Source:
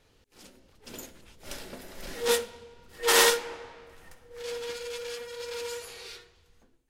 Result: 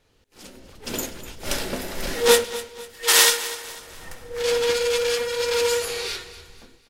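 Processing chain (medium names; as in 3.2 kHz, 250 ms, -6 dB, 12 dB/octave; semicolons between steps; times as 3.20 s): 2.44–3.68 s: tilt shelf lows -6 dB, about 1.4 kHz; level rider gain up to 15 dB; feedback delay 248 ms, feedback 40%, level -15.5 dB; trim -1 dB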